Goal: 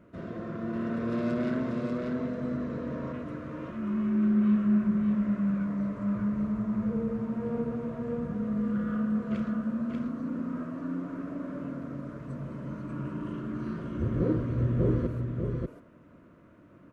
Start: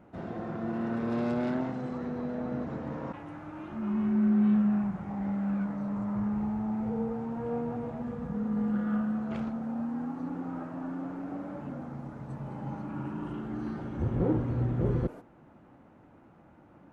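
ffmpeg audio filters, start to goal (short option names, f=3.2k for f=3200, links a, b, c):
-af "asuperstop=centerf=810:order=4:qfactor=2.9,aecho=1:1:589:0.668"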